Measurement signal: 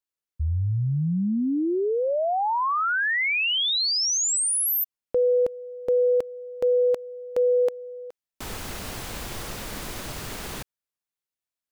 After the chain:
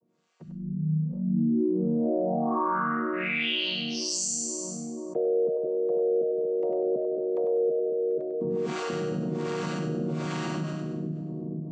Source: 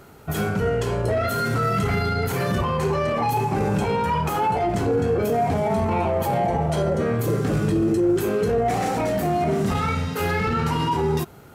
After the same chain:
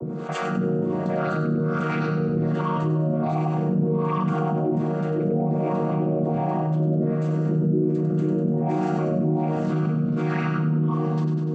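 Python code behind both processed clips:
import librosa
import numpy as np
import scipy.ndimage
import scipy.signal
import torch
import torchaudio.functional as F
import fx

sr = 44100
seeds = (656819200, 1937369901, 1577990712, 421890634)

y = fx.chord_vocoder(x, sr, chord='minor triad', root=51)
y = fx.low_shelf(y, sr, hz=210.0, db=9.0)
y = fx.small_body(y, sr, hz=(350.0, 620.0, 1100.0, 2300.0), ring_ms=45, db=7)
y = fx.harmonic_tremolo(y, sr, hz=1.3, depth_pct=100, crossover_hz=640.0)
y = fx.echo_split(y, sr, split_hz=480.0, low_ms=482, high_ms=98, feedback_pct=52, wet_db=-6)
y = fx.env_flatten(y, sr, amount_pct=70)
y = F.gain(torch.from_numpy(y), -7.5).numpy()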